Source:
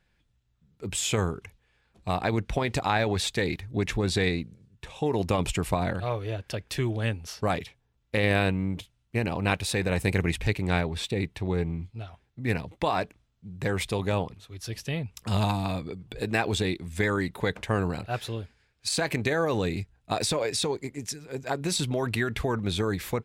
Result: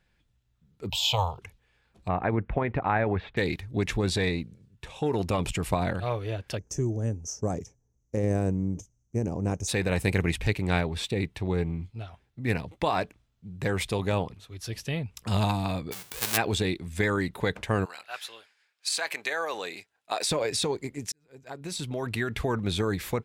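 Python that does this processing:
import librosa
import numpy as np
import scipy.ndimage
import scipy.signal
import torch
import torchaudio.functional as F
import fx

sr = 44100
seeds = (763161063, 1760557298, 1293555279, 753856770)

y = fx.curve_eq(x, sr, hz=(130.0, 180.0, 350.0, 540.0, 930.0, 1600.0, 2900.0, 4400.0, 9800.0, 15000.0), db=(0, -18, -26, 2, 14, -25, 8, 7, -17, 12), at=(0.9, 1.39))
y = fx.lowpass(y, sr, hz=2100.0, slope=24, at=(2.08, 3.37))
y = fx.transformer_sat(y, sr, knee_hz=360.0, at=(4.1, 5.72))
y = fx.curve_eq(y, sr, hz=(420.0, 4100.0, 6100.0, 9900.0), db=(0, -28, 12, -11), at=(6.57, 9.67), fade=0.02)
y = fx.envelope_flatten(y, sr, power=0.1, at=(15.91, 16.36), fade=0.02)
y = fx.highpass(y, sr, hz=fx.line((17.84, 1300.0), (20.29, 530.0)), slope=12, at=(17.84, 20.29), fade=0.02)
y = fx.edit(y, sr, fx.fade_in_span(start_s=21.12, length_s=1.4), tone=tone)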